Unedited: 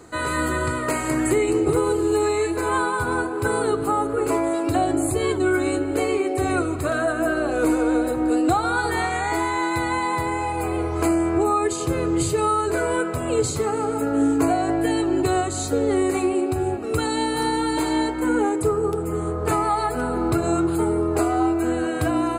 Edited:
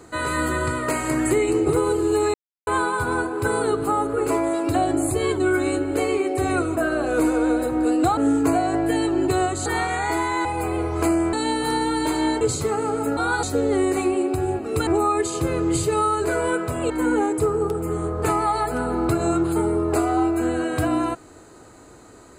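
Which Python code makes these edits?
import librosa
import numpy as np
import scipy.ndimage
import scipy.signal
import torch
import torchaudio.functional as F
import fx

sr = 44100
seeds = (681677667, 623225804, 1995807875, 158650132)

y = fx.edit(x, sr, fx.silence(start_s=2.34, length_s=0.33),
    fx.cut(start_s=6.77, length_s=0.45),
    fx.swap(start_s=8.62, length_s=0.26, other_s=14.12, other_length_s=1.49),
    fx.cut(start_s=9.67, length_s=0.78),
    fx.swap(start_s=11.33, length_s=2.03, other_s=17.05, other_length_s=1.08), tone=tone)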